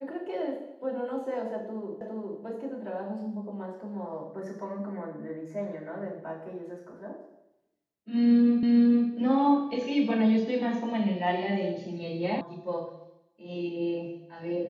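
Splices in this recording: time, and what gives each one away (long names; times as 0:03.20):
0:02.01: the same again, the last 0.41 s
0:08.63: the same again, the last 0.46 s
0:12.41: cut off before it has died away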